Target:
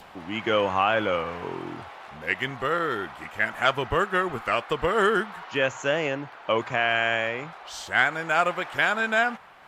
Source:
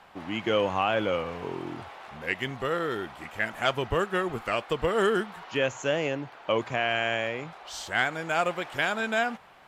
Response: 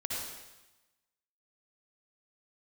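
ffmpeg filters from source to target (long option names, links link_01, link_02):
-af "adynamicequalizer=threshold=0.01:dfrequency=1400:dqfactor=0.79:tfrequency=1400:tqfactor=0.79:attack=5:release=100:ratio=0.375:range=3:mode=boostabove:tftype=bell,acompressor=mode=upward:threshold=-40dB:ratio=2.5"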